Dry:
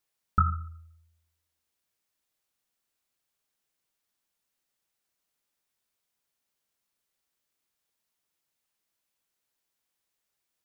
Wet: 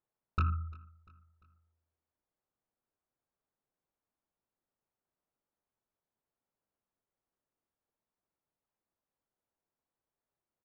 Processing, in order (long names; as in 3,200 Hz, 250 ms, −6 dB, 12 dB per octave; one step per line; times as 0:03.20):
low-pass filter 1,000 Hz 12 dB per octave
soft clipping −24 dBFS, distortion −10 dB
on a send: repeating echo 346 ms, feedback 45%, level −23 dB